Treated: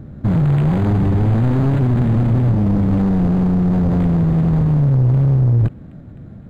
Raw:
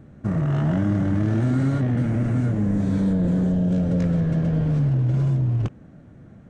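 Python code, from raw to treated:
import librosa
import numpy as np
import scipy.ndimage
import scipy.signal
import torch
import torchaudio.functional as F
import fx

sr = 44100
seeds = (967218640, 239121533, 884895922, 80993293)

p1 = fx.self_delay(x, sr, depth_ms=0.78)
p2 = fx.echo_wet_highpass(p1, sr, ms=257, feedback_pct=74, hz=2000.0, wet_db=-20.5)
p3 = fx.rider(p2, sr, range_db=10, speed_s=0.5)
p4 = p2 + F.gain(torch.from_numpy(p3), -2.0).numpy()
p5 = np.clip(p4, -10.0 ** (-16.0 / 20.0), 10.0 ** (-16.0 / 20.0))
p6 = fx.low_shelf(p5, sr, hz=180.0, db=8.0)
y = np.interp(np.arange(len(p6)), np.arange(len(p6))[::8], p6[::8])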